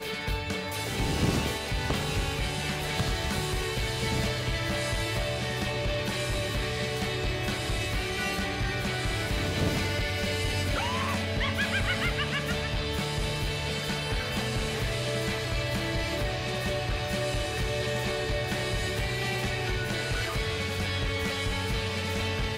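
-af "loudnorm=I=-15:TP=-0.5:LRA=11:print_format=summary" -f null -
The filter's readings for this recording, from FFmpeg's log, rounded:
Input Integrated:    -29.4 LUFS
Input True Peak:     -16.2 dBTP
Input LRA:             1.4 LU
Input Threshold:     -39.4 LUFS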